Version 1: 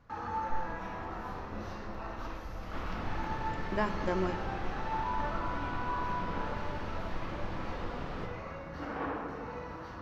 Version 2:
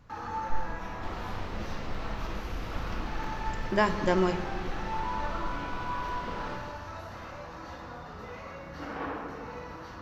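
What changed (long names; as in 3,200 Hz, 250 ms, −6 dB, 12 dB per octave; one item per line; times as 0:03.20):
speech +6.5 dB
second sound: entry −1.70 s
master: add high-shelf EQ 3,400 Hz +8 dB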